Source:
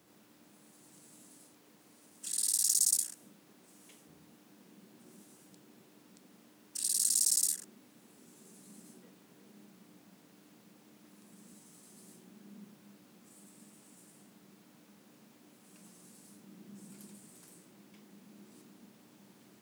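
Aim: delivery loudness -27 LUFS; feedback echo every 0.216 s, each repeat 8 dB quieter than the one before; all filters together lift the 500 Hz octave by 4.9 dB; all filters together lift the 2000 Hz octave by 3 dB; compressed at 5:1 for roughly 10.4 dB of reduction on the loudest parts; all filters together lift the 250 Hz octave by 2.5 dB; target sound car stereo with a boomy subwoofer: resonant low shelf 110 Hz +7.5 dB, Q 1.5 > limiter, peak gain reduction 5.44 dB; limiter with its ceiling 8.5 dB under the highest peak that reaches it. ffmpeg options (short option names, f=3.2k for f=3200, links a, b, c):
-af "equalizer=f=250:t=o:g=3.5,equalizer=f=500:t=o:g=5.5,equalizer=f=2k:t=o:g=3.5,acompressor=threshold=-36dB:ratio=5,alimiter=level_in=8.5dB:limit=-24dB:level=0:latency=1,volume=-8.5dB,lowshelf=f=110:t=q:w=1.5:g=7.5,aecho=1:1:216|432|648|864|1080:0.398|0.159|0.0637|0.0255|0.0102,volume=24.5dB,alimiter=limit=-11.5dB:level=0:latency=1"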